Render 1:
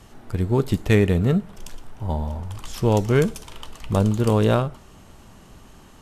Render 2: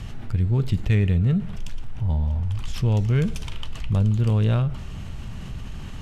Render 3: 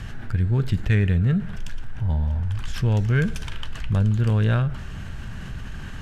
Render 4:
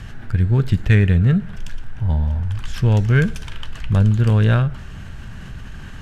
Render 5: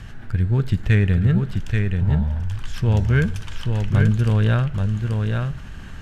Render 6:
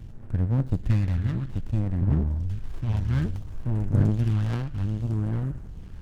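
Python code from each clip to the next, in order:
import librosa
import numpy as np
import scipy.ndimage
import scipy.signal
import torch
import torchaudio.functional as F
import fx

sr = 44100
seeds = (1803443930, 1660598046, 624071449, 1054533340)

y1 = fx.curve_eq(x, sr, hz=(130.0, 320.0, 1000.0, 2600.0, 12000.0), db=(0, -13, -14, -6, -19))
y1 = fx.env_flatten(y1, sr, amount_pct=50)
y2 = fx.peak_eq(y1, sr, hz=1600.0, db=12.5, octaves=0.37)
y3 = fx.upward_expand(y2, sr, threshold_db=-29.0, expansion=1.5)
y3 = y3 * 10.0 ** (6.5 / 20.0)
y4 = y3 + 10.0 ** (-4.5 / 20.0) * np.pad(y3, (int(833 * sr / 1000.0), 0))[:len(y3)]
y4 = y4 * 10.0 ** (-3.0 / 20.0)
y5 = fx.phaser_stages(y4, sr, stages=2, low_hz=320.0, high_hz=3800.0, hz=0.6, feedback_pct=30)
y5 = fx.running_max(y5, sr, window=65)
y5 = y5 * 10.0 ** (-4.0 / 20.0)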